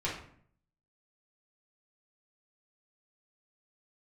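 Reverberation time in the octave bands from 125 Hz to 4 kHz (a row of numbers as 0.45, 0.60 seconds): 0.85, 0.75, 0.60, 0.55, 0.50, 0.40 seconds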